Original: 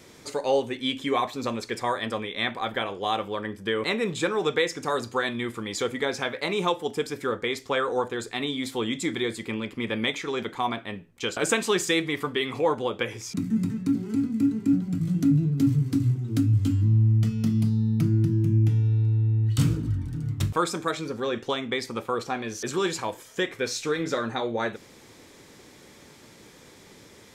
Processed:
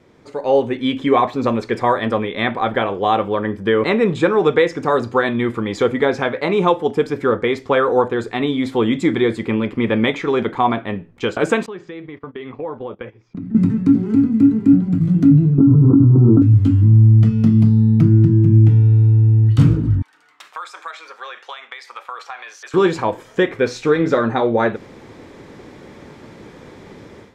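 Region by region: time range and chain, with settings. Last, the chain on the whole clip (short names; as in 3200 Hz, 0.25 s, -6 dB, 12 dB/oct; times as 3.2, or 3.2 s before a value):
11.66–13.55 gate -34 dBFS, range -21 dB + compressor 2.5:1, threshold -43 dBFS + air absorption 180 m
15.58–16.42 rippled Chebyshev low-pass 1400 Hz, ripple 6 dB + bell 79 Hz -8 dB 0.68 oct + fast leveller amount 100%
20.02–22.74 Bessel high-pass 1300 Hz, order 4 + compressor 5:1, threshold -36 dBFS
whole clip: LPF 3500 Hz 6 dB/oct; high shelf 2600 Hz -12 dB; AGC gain up to 13 dB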